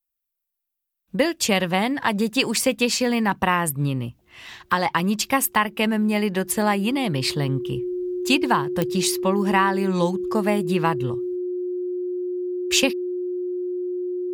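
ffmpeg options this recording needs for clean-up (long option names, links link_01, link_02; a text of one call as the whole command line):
ffmpeg -i in.wav -af "adeclick=threshold=4,bandreject=frequency=360:width=30" out.wav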